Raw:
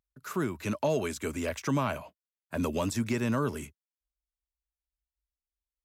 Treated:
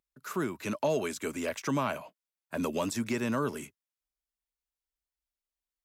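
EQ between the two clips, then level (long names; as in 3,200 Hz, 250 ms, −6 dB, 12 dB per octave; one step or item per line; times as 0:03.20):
parametric band 72 Hz −14.5 dB 1.3 octaves
0.0 dB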